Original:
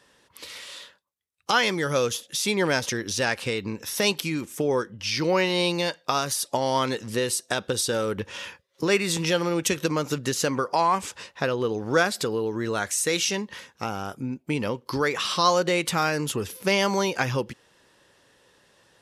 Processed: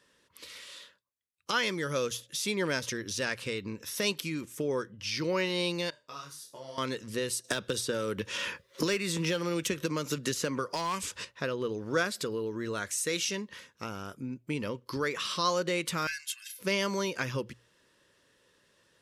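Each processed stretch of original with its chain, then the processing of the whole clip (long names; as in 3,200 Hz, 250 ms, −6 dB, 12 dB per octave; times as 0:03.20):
0:05.90–0:06.78: tuned comb filter 74 Hz, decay 0.33 s, mix 90% + micro pitch shift up and down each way 37 cents
0:07.44–0:11.25: gain into a clipping stage and back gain 15 dB + multiband upward and downward compressor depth 100%
0:16.07–0:16.59: Butterworth high-pass 1,600 Hz 48 dB per octave + comb filter 1.9 ms, depth 77%
whole clip: parametric band 780 Hz −12.5 dB 0.29 octaves; mains-hum notches 60/120 Hz; level −6.5 dB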